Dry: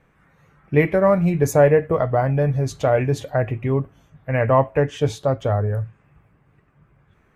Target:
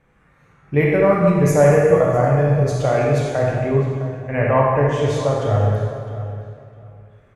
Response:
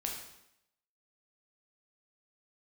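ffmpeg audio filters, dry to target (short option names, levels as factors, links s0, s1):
-filter_complex "[0:a]asplit=2[s0][s1];[s1]adelay=657,lowpass=f=3700:p=1,volume=0.2,asplit=2[s2][s3];[s3]adelay=657,lowpass=f=3700:p=1,volume=0.21[s4];[s0][s2][s4]amix=inputs=3:normalize=0[s5];[1:a]atrim=start_sample=2205,asetrate=22932,aresample=44100[s6];[s5][s6]afir=irnorm=-1:irlink=0,volume=0.668"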